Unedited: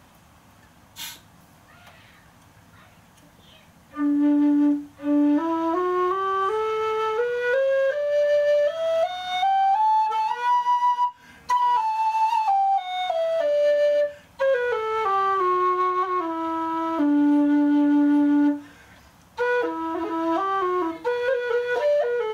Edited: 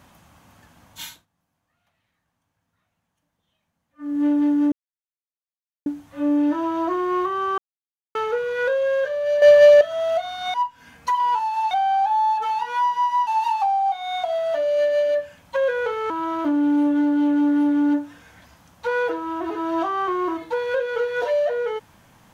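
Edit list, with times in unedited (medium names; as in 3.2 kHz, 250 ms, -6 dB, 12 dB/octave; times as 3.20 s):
1.02–4.22 s: dip -23.5 dB, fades 0.24 s
4.72 s: insert silence 1.14 s
6.44–7.01 s: mute
8.28–8.67 s: gain +9.5 dB
10.96–12.13 s: move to 9.40 s
14.96–16.64 s: delete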